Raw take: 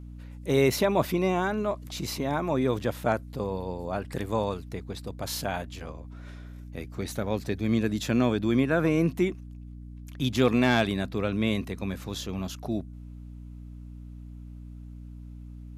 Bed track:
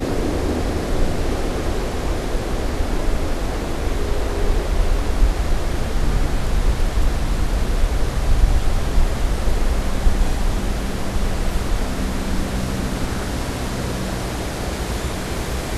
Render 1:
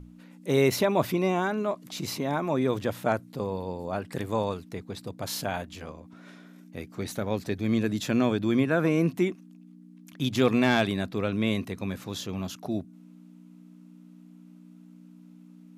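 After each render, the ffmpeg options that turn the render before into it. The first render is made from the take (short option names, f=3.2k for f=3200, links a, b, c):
-af "bandreject=f=60:t=h:w=6,bandreject=f=120:t=h:w=6"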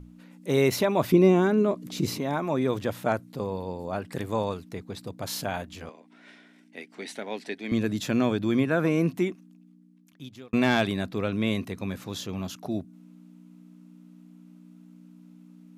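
-filter_complex "[0:a]asettb=1/sr,asplit=3[a][b][c];[a]atrim=end=1.124[d];[b]atrim=start=1.12:end=2.18,asetpts=PTS-STARTPTS,afade=t=in:d=0.004:c=qsin,afade=t=out:st=1.056:d=0.004:c=qsin,lowshelf=f=540:t=q:w=1.5:g=7[e];[c]atrim=start=2.176[f];[d][e]acrossfade=d=0.004:c1=hsin:c2=qsin[g];[g][f]acrossfade=d=0.004:c1=qsin:c2=hsin,asettb=1/sr,asplit=3[h][i][j];[h]atrim=end=5.894[k];[i]atrim=start=5.89:end=7.72,asetpts=PTS-STARTPTS,afade=t=in:d=0.004:c=qsin,afade=t=out:st=1.826:d=0.004:c=qsin,highpass=f=260:w=0.5412,highpass=f=260:w=1.3066,equalizer=f=330:t=q:w=4:g=-6,equalizer=f=530:t=q:w=4:g=-6,equalizer=f=1.2k:t=q:w=4:g=-9,equalizer=f=2k:t=q:w=4:g=6,equalizer=f=2.9k:t=q:w=4:g=4,equalizer=f=6.7k:t=q:w=4:g=-6,lowpass=f=9.5k:w=0.5412,lowpass=f=9.5k:w=1.3066[l];[j]atrim=start=7.716[m];[k][l]acrossfade=d=0.004:c1=hsin:c2=qsin[n];[n][m]acrossfade=d=0.004:c1=qsin:c2=hsin,asplit=2[o][p];[o]atrim=end=10.53,asetpts=PTS-STARTPTS,afade=t=out:st=9.09:d=1.44[q];[p]atrim=start=10.53,asetpts=PTS-STARTPTS,afade=t=in:d=0.004:c=hsin[r];[q][r]concat=n=2:v=0:a=1"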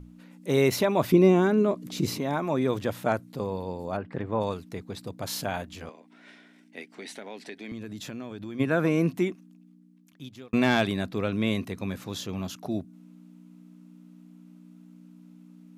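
-filter_complex "[0:a]asplit=3[a][b][c];[a]afade=t=out:st=3.96:d=0.02[d];[b]lowpass=2k,afade=t=in:st=3.96:d=0.02,afade=t=out:st=4.4:d=0.02[e];[c]afade=t=in:st=4.4:d=0.02[f];[d][e][f]amix=inputs=3:normalize=0,asplit=3[g][h][i];[g]afade=t=out:st=6.86:d=0.02[j];[h]acompressor=threshold=-36dB:ratio=4:attack=3.2:release=140:knee=1:detection=peak,afade=t=in:st=6.86:d=0.02,afade=t=out:st=8.59:d=0.02[k];[i]afade=t=in:st=8.59:d=0.02[l];[j][k][l]amix=inputs=3:normalize=0"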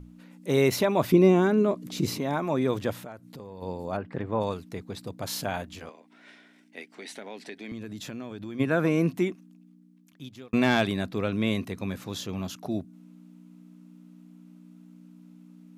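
-filter_complex "[0:a]asplit=3[a][b][c];[a]afade=t=out:st=3.02:d=0.02[d];[b]acompressor=threshold=-40dB:ratio=4:attack=3.2:release=140:knee=1:detection=peak,afade=t=in:st=3.02:d=0.02,afade=t=out:st=3.61:d=0.02[e];[c]afade=t=in:st=3.61:d=0.02[f];[d][e][f]amix=inputs=3:normalize=0,asettb=1/sr,asplit=3[g][h][i];[g]atrim=end=5.794[j];[h]atrim=start=5.79:end=7.16,asetpts=PTS-STARTPTS,afade=t=in:d=0.004:c=qsin,afade=t=out:st=1.366:d=0.004:c=qsin,lowshelf=f=200:g=-7[k];[i]atrim=start=7.156[l];[j][k]acrossfade=d=0.004:c1=hsin:c2=qsin[m];[m][l]acrossfade=d=0.004:c1=qsin:c2=hsin"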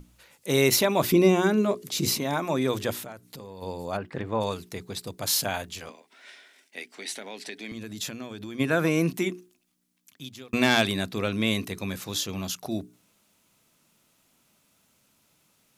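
-af "highshelf=f=2.8k:g=11.5,bandreject=f=60:t=h:w=6,bandreject=f=120:t=h:w=6,bandreject=f=180:t=h:w=6,bandreject=f=240:t=h:w=6,bandreject=f=300:t=h:w=6,bandreject=f=360:t=h:w=6,bandreject=f=420:t=h:w=6"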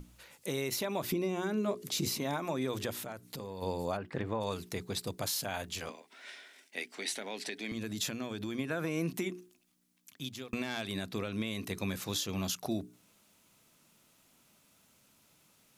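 -af "acompressor=threshold=-26dB:ratio=5,alimiter=limit=-23dB:level=0:latency=1:release=376"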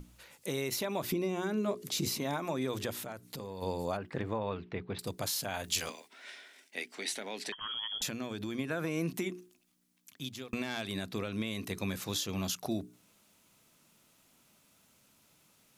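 -filter_complex "[0:a]asettb=1/sr,asplit=3[a][b][c];[a]atrim=end=4.384[d];[b]atrim=start=4.38:end=4.99,asetpts=PTS-STARTPTS,afade=t=in:d=0.004:c=qsin,afade=t=out:st=0.606:d=0.004:c=qsin,lowpass=f=2.9k:w=0.5412,lowpass=f=2.9k:w=1.3066[e];[c]atrim=start=4.986[f];[d][e]acrossfade=d=0.004:c1=hsin:c2=qsin[g];[g][f]acrossfade=d=0.004:c1=qsin:c2=hsin,asettb=1/sr,asplit=3[h][i][j];[h]atrim=end=5.644[k];[i]atrim=start=5.64:end=6.08,asetpts=PTS-STARTPTS,afade=t=in:d=0.004:c=qsin,afade=t=out:st=0.436:d=0.004:c=qsin,highshelf=f=2.5k:g=11[l];[j]atrim=start=6.076[m];[k][l]acrossfade=d=0.004:c1=hsin:c2=qsin[n];[n][m]acrossfade=d=0.004:c1=qsin:c2=hsin,asettb=1/sr,asplit=3[o][p][q];[o]atrim=end=7.524[r];[p]atrim=start=7.52:end=8.02,asetpts=PTS-STARTPTS,afade=t=in:d=0.004:c=qsin,afade=t=out:st=0.496:d=0.004:c=qsin,lowpass=f=3k:t=q:w=0.5098,lowpass=f=3k:t=q:w=0.6013,lowpass=f=3k:t=q:w=0.9,lowpass=f=3k:t=q:w=2.563,afreqshift=-3500[s];[q]atrim=start=8.016[t];[r][s]acrossfade=d=0.004:c1=hsin:c2=qsin[u];[u][t]acrossfade=d=0.004:c1=qsin:c2=hsin"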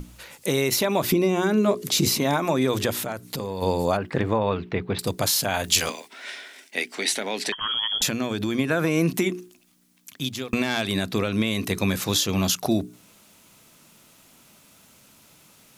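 -af "volume=12dB"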